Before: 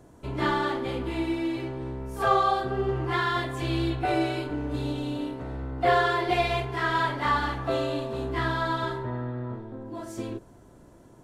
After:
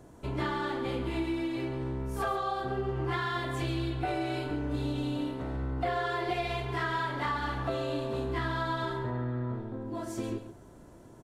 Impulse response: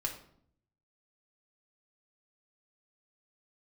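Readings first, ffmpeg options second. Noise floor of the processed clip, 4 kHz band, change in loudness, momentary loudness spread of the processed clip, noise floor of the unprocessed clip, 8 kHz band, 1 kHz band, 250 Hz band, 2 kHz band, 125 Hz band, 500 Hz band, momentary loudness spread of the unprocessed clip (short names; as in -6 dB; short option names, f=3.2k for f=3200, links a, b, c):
-52 dBFS, -5.5 dB, -5.0 dB, 5 LU, -52 dBFS, -2.5 dB, -7.0 dB, -3.5 dB, -6.0 dB, -2.0 dB, -5.5 dB, 12 LU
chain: -filter_complex "[0:a]acompressor=threshold=-29dB:ratio=6,asplit=2[a][b];[b]aecho=0:1:137:0.266[c];[a][c]amix=inputs=2:normalize=0"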